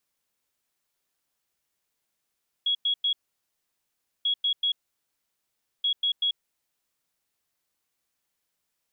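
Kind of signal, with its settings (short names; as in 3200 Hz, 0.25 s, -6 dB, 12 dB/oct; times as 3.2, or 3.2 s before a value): beep pattern sine 3330 Hz, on 0.09 s, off 0.10 s, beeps 3, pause 1.12 s, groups 3, -21.5 dBFS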